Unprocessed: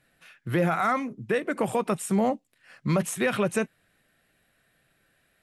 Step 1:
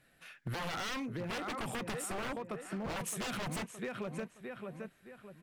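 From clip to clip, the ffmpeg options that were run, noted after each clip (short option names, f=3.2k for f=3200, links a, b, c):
-filter_complex "[0:a]asplit=2[a][b];[b]adelay=617,lowpass=f=3.5k:p=1,volume=-9.5dB,asplit=2[c][d];[d]adelay=617,lowpass=f=3.5k:p=1,volume=0.38,asplit=2[e][f];[f]adelay=617,lowpass=f=3.5k:p=1,volume=0.38,asplit=2[g][h];[h]adelay=617,lowpass=f=3.5k:p=1,volume=0.38[i];[a][c][e][g][i]amix=inputs=5:normalize=0,aeval=exprs='0.0501*(abs(mod(val(0)/0.0501+3,4)-2)-1)':c=same,acompressor=threshold=-35dB:ratio=6,volume=-1dB"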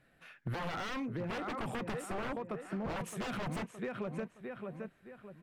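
-af "highshelf=f=3.3k:g=-12,volume=1.5dB"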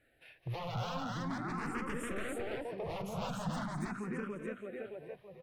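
-filter_complex "[0:a]asplit=2[a][b];[b]aecho=0:1:207|285.7:0.316|0.891[c];[a][c]amix=inputs=2:normalize=0,asplit=2[d][e];[e]afreqshift=0.42[f];[d][f]amix=inputs=2:normalize=1"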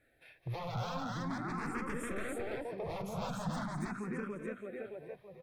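-af "bandreject=f=2.9k:w=6.8"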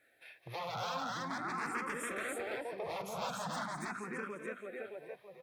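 -af "highpass=f=740:p=1,volume=4.5dB"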